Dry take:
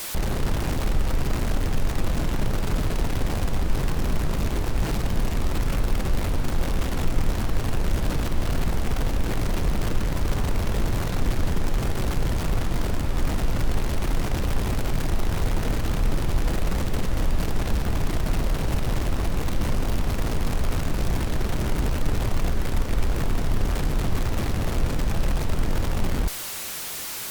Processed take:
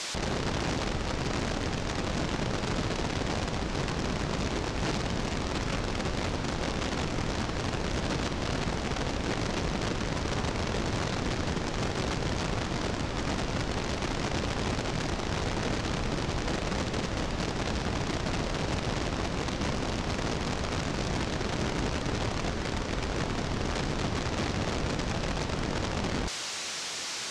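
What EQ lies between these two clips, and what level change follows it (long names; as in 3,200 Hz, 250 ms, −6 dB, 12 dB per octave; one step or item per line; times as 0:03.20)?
high-pass filter 180 Hz 6 dB per octave
low-pass filter 6,500 Hz 24 dB per octave
high-shelf EQ 4,600 Hz +5.5 dB
0.0 dB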